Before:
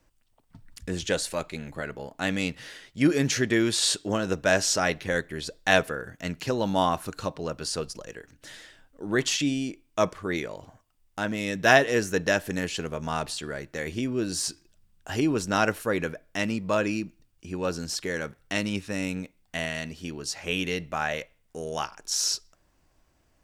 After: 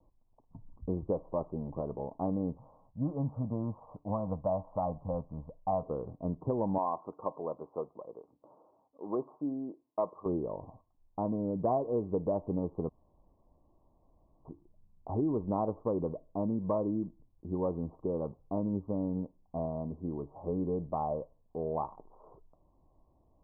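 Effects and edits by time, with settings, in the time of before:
2.57–5.83 fixed phaser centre 910 Hz, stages 4
6.78–10.26 weighting filter A
12.89–14.45 room tone
whole clip: steep low-pass 1100 Hz 96 dB/oct; compressor 4:1, threshold -28 dBFS

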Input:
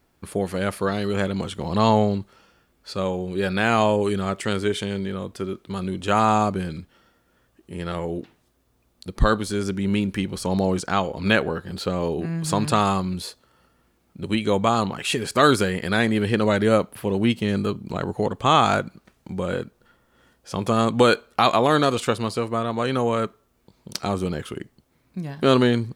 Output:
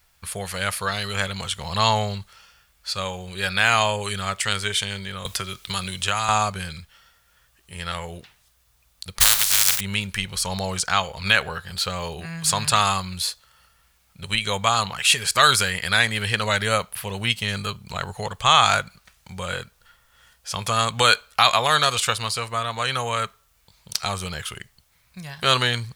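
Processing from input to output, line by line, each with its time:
5.25–6.29 three-band squash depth 100%
9.2–9.79 spectral contrast lowered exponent 0.17
whole clip: passive tone stack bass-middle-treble 10-0-10; maximiser +11.5 dB; gain -1 dB

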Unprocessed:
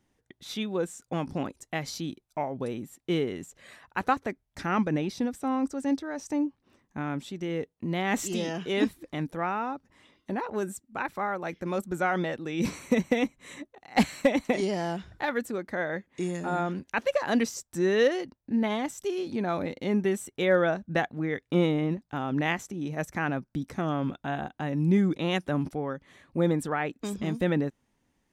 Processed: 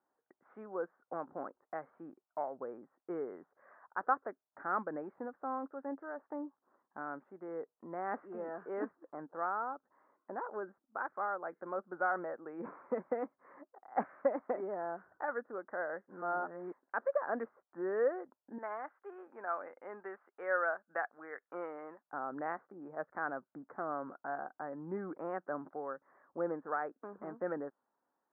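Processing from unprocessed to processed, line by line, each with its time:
8.95–9.38 median filter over 15 samples
16.08–16.83 reverse
18.58–22.07 weighting filter ITU-R 468
whole clip: HPF 640 Hz 12 dB/oct; dynamic EQ 910 Hz, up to -5 dB, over -48 dBFS, Q 2.5; steep low-pass 1500 Hz 48 dB/oct; gain -1.5 dB

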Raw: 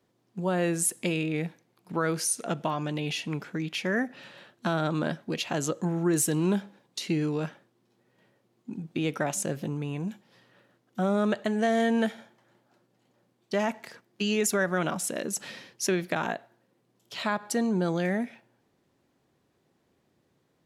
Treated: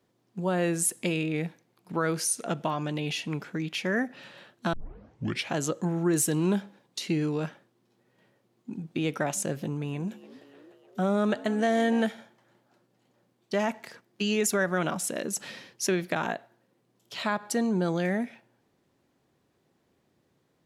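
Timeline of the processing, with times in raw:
4.73 tape start 0.81 s
9.51–12.03 frequency-shifting echo 0.299 s, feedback 62%, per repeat +68 Hz, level -18.5 dB

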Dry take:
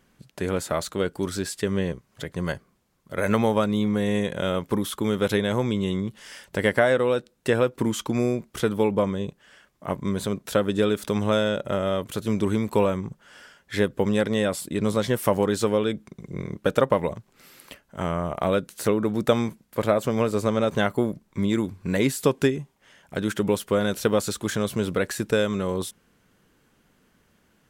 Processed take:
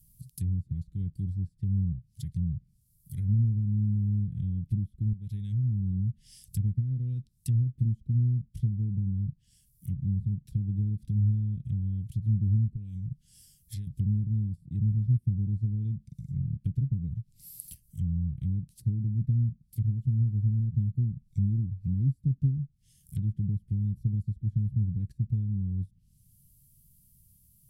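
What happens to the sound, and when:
5.13–6.01 fade in, from -13 dB
12.69–13.87 compressor 3:1, threshold -32 dBFS
23.72–24.23 high shelf 5000 Hz +11 dB
whole clip: Chebyshev band-stop 130–5300 Hz, order 3; treble ducked by the level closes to 410 Hz, closed at -32.5 dBFS; EQ curve 2000 Hz 0 dB, 6400 Hz -12 dB, 11000 Hz +9 dB; gain +7.5 dB

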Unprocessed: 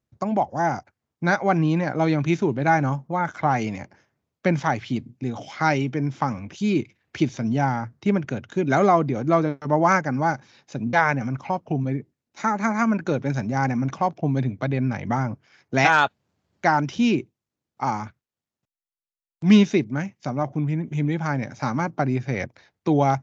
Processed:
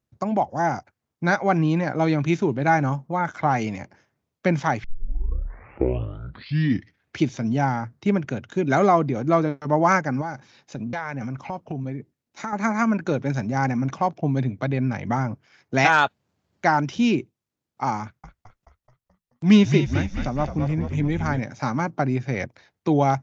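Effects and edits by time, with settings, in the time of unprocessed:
4.84 tape start 2.36 s
10.21–12.53 compressor 5:1, threshold -26 dBFS
18.02–21.4 frequency-shifting echo 0.215 s, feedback 57%, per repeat -58 Hz, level -7.5 dB

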